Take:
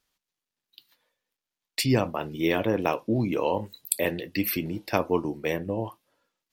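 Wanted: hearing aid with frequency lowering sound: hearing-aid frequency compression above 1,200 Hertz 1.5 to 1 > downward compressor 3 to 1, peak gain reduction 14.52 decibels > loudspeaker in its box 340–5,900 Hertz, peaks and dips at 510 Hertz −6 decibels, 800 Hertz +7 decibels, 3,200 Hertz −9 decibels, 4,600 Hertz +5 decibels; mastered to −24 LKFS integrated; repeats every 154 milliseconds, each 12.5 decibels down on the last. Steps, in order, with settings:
repeating echo 154 ms, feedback 24%, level −12.5 dB
hearing-aid frequency compression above 1,200 Hz 1.5 to 1
downward compressor 3 to 1, threshold −37 dBFS
loudspeaker in its box 340–5,900 Hz, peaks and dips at 510 Hz −6 dB, 800 Hz +7 dB, 3,200 Hz −9 dB, 4,600 Hz +5 dB
level +16.5 dB

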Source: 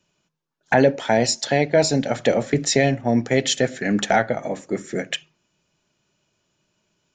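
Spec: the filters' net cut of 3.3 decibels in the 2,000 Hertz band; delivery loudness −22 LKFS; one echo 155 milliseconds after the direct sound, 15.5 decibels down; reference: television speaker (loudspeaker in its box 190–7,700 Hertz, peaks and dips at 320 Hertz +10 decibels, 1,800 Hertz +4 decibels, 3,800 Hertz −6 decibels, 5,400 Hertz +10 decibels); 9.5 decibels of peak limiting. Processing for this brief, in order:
parametric band 2,000 Hz −7 dB
brickwall limiter −14 dBFS
loudspeaker in its box 190–7,700 Hz, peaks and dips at 320 Hz +10 dB, 1,800 Hz +4 dB, 3,800 Hz −6 dB, 5,400 Hz +10 dB
single-tap delay 155 ms −15.5 dB
level +1 dB

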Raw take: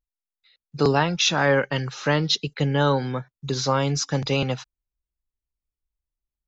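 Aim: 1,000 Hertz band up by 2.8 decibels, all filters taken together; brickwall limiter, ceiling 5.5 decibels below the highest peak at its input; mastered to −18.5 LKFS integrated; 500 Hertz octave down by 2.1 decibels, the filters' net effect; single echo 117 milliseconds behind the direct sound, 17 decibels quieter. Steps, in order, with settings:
parametric band 500 Hz −3.5 dB
parametric band 1,000 Hz +4.5 dB
brickwall limiter −11 dBFS
single-tap delay 117 ms −17 dB
level +5.5 dB

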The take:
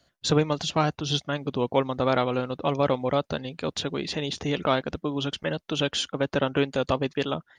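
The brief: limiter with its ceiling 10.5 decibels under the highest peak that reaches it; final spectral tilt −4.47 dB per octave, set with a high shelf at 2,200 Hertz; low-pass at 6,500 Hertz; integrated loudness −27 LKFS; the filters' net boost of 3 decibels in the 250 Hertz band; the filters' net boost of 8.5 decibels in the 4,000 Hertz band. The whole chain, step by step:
low-pass filter 6,500 Hz
parametric band 250 Hz +3.5 dB
high-shelf EQ 2,200 Hz +4.5 dB
parametric band 4,000 Hz +7 dB
brickwall limiter −15 dBFS

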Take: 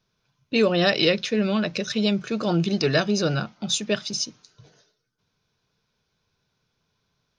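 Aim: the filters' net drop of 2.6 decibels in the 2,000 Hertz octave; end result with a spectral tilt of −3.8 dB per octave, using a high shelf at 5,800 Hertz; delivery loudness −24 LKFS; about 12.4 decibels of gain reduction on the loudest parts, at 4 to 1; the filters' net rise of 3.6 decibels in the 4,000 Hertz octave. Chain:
parametric band 2,000 Hz −5.5 dB
parametric band 4,000 Hz +3.5 dB
high-shelf EQ 5,800 Hz +6.5 dB
downward compressor 4 to 1, threshold −30 dBFS
level +8 dB

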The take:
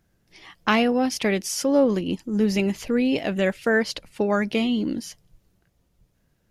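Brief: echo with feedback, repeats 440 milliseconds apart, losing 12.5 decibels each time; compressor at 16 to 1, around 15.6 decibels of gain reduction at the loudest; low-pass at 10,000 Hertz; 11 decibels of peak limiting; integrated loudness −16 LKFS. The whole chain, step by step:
low-pass filter 10,000 Hz
downward compressor 16 to 1, threshold −30 dBFS
brickwall limiter −28.5 dBFS
repeating echo 440 ms, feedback 24%, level −12.5 dB
level +21.5 dB

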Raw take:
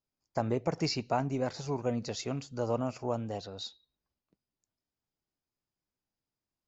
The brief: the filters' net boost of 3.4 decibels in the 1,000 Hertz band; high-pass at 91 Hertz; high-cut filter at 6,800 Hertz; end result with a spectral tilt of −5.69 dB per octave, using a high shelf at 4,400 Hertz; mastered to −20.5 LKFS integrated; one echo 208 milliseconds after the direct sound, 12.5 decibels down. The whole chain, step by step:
high-pass filter 91 Hz
low-pass filter 6,800 Hz
parametric band 1,000 Hz +5 dB
high-shelf EQ 4,400 Hz −6 dB
single-tap delay 208 ms −12.5 dB
level +12.5 dB

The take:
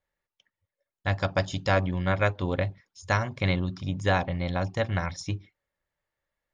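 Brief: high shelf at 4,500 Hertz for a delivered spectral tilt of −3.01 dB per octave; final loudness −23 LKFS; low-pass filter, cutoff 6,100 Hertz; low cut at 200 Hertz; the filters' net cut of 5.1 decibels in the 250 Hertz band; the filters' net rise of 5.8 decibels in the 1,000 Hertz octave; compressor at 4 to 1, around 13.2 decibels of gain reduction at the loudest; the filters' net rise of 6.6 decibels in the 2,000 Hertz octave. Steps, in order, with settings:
high-pass filter 200 Hz
low-pass filter 6,100 Hz
parametric band 250 Hz −4 dB
parametric band 1,000 Hz +6.5 dB
parametric band 2,000 Hz +7.5 dB
high-shelf EQ 4,500 Hz −8.5 dB
downward compressor 4 to 1, threshold −31 dBFS
level +13 dB

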